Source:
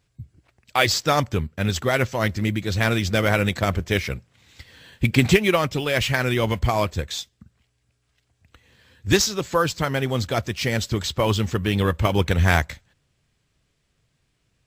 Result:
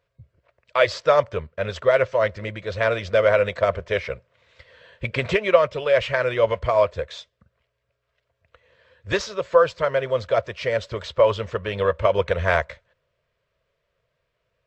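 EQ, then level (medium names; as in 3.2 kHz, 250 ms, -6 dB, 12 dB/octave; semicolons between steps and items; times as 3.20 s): Butterworth band-stop 790 Hz, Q 4.2; tape spacing loss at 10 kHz 28 dB; resonant low shelf 390 Hz -11 dB, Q 3; +3.0 dB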